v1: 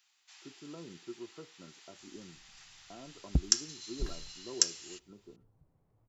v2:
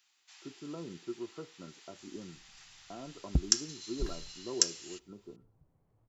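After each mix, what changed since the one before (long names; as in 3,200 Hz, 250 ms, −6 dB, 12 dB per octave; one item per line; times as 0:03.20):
speech +4.5 dB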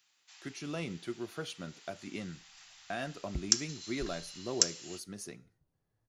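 speech: remove Chebyshev low-pass with heavy ripple 1,400 Hz, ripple 9 dB
second sound −9.5 dB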